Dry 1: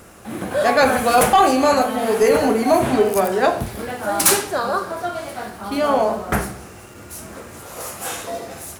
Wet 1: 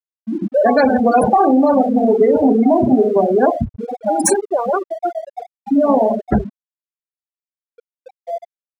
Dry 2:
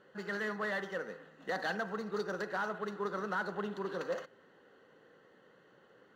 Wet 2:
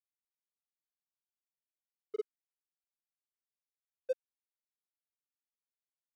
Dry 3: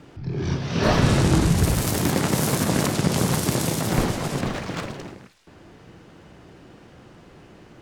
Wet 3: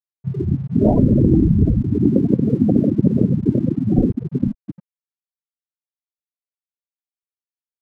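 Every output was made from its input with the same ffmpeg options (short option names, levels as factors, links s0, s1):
-af "equalizer=f=160:t=o:w=0.33:g=-5,equalizer=f=1250:t=o:w=0.33:g=-8,equalizer=f=3150:t=o:w=0.33:g=-10,equalizer=f=12500:t=o:w=0.33:g=-10,afftfilt=real='re*gte(hypot(re,im),0.251)':imag='im*gte(hypot(re,im),0.251)':win_size=1024:overlap=0.75,equalizer=f=240:w=1.4:g=8,acompressor=threshold=0.178:ratio=6,aeval=exprs='sgn(val(0))*max(abs(val(0))-0.00211,0)':c=same,volume=2"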